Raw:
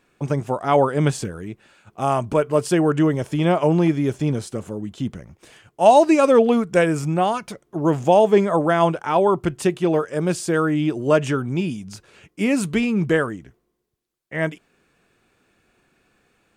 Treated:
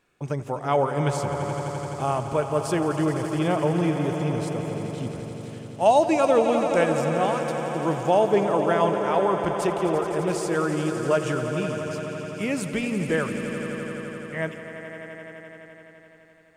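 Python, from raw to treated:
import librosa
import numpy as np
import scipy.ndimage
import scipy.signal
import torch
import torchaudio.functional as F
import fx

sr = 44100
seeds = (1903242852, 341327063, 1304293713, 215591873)

p1 = fx.peak_eq(x, sr, hz=250.0, db=-4.0, octaves=0.85)
p2 = p1 + fx.echo_swell(p1, sr, ms=85, loudest=5, wet_db=-12, dry=0)
y = p2 * librosa.db_to_amplitude(-5.0)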